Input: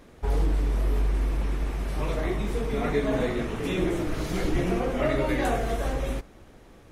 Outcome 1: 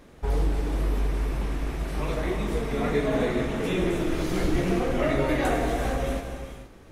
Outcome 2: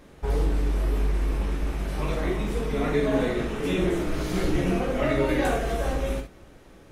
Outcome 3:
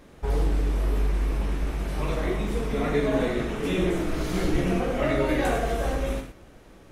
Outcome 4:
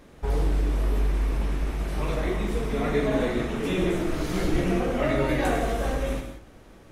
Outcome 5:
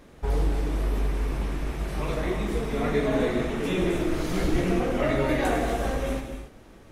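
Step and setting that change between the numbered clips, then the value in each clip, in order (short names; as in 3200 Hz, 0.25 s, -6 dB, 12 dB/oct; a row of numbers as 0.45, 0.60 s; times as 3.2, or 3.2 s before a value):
non-linear reverb, gate: 500, 90, 140, 210, 310 ms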